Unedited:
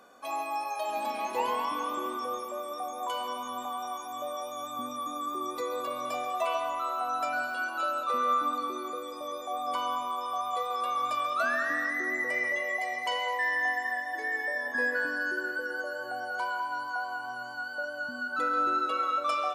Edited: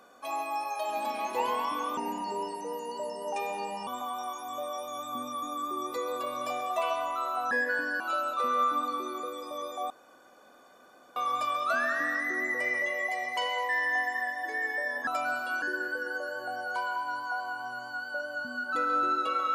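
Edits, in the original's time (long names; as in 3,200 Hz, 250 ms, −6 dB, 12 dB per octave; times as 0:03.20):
0:01.97–0:03.51: play speed 81%
0:07.15–0:07.70: swap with 0:14.77–0:15.26
0:09.60–0:10.86: fill with room tone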